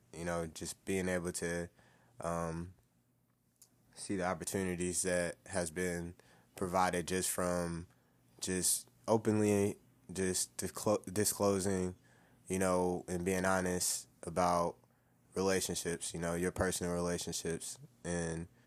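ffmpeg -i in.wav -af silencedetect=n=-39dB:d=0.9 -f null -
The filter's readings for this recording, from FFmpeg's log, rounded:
silence_start: 2.65
silence_end: 3.99 | silence_duration: 1.34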